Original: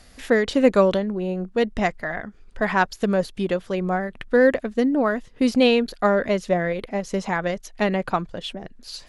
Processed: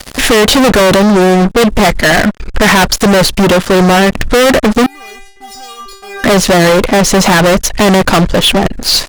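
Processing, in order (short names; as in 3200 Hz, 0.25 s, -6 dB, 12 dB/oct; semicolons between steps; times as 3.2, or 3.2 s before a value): fuzz box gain 39 dB, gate -46 dBFS; 4.86–6.24 metallic resonator 390 Hz, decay 0.59 s, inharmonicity 0.002; gain +7.5 dB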